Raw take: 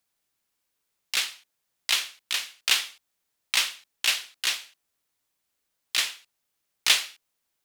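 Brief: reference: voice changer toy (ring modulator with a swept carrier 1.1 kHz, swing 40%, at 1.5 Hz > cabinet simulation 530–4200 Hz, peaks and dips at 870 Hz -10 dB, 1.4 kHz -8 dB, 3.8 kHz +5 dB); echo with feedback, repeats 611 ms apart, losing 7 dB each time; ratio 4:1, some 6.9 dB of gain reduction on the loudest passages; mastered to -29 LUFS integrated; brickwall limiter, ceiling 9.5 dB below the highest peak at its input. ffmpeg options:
-af "acompressor=threshold=0.0631:ratio=4,alimiter=limit=0.141:level=0:latency=1,aecho=1:1:611|1222|1833|2444|3055:0.447|0.201|0.0905|0.0407|0.0183,aeval=exprs='val(0)*sin(2*PI*1100*n/s+1100*0.4/1.5*sin(2*PI*1.5*n/s))':c=same,highpass=530,equalizer=f=870:t=q:w=4:g=-10,equalizer=f=1400:t=q:w=4:g=-8,equalizer=f=3800:t=q:w=4:g=5,lowpass=f=4200:w=0.5412,lowpass=f=4200:w=1.3066,volume=2.82"

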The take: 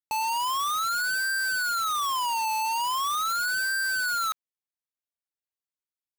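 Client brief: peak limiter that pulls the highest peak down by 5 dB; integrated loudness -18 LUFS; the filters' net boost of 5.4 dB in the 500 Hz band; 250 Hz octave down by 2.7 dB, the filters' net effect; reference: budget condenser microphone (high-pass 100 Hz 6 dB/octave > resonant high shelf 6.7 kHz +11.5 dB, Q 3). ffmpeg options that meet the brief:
-af "equalizer=f=250:t=o:g=-6.5,equalizer=f=500:t=o:g=8.5,alimiter=level_in=1.41:limit=0.0631:level=0:latency=1,volume=0.708,highpass=f=100:p=1,highshelf=f=6700:t=q:w=3:g=11.5,volume=1.68"

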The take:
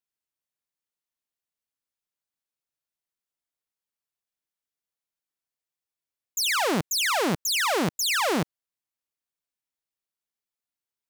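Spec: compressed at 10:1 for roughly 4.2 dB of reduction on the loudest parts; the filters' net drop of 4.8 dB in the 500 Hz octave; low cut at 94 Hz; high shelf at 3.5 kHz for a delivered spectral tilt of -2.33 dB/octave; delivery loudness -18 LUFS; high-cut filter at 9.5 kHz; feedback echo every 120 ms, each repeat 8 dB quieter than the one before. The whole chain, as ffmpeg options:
-af "highpass=94,lowpass=9500,equalizer=f=500:t=o:g=-6,highshelf=f=3500:g=-8,acompressor=threshold=0.0398:ratio=10,aecho=1:1:120|240|360|480|600:0.398|0.159|0.0637|0.0255|0.0102,volume=3.98"

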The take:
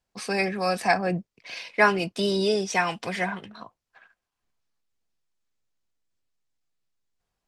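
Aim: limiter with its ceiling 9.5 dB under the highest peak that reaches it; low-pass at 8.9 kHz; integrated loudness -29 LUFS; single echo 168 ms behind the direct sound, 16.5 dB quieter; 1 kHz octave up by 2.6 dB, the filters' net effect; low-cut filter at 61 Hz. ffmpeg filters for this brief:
-af "highpass=61,lowpass=8900,equalizer=f=1000:t=o:g=3.5,alimiter=limit=0.168:level=0:latency=1,aecho=1:1:168:0.15,volume=0.794"

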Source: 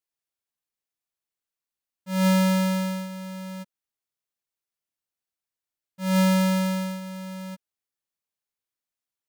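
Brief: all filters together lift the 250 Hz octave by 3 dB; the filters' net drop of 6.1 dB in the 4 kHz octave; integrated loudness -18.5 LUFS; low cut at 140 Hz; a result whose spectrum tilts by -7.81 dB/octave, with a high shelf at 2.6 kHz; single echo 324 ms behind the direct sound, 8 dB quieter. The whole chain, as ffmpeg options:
-af "highpass=140,equalizer=f=250:t=o:g=7,highshelf=f=2600:g=-6,equalizer=f=4000:t=o:g=-3,aecho=1:1:324:0.398,volume=1.33"

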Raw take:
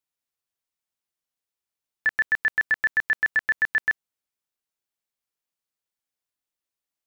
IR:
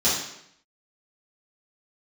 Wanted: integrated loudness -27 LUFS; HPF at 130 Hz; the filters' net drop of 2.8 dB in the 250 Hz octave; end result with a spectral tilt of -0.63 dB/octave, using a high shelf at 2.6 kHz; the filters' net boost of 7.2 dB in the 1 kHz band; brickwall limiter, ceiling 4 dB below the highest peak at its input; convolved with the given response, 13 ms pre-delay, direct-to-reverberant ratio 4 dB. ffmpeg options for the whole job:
-filter_complex "[0:a]highpass=130,equalizer=f=250:t=o:g=-4,equalizer=f=1000:t=o:g=8.5,highshelf=f=2600:g=6,alimiter=limit=0.211:level=0:latency=1,asplit=2[s0][s1];[1:a]atrim=start_sample=2205,adelay=13[s2];[s1][s2]afir=irnorm=-1:irlink=0,volume=0.119[s3];[s0][s3]amix=inputs=2:normalize=0,volume=0.596"

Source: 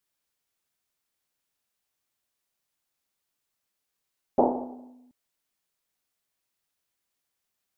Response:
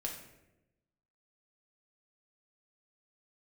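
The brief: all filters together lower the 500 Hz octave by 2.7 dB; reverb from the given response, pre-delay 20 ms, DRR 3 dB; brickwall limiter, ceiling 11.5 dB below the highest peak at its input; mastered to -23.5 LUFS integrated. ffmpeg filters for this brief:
-filter_complex "[0:a]equalizer=f=500:t=o:g=-3.5,alimiter=limit=0.0794:level=0:latency=1,asplit=2[s0][s1];[1:a]atrim=start_sample=2205,adelay=20[s2];[s1][s2]afir=irnorm=-1:irlink=0,volume=0.668[s3];[s0][s3]amix=inputs=2:normalize=0,volume=3.55"

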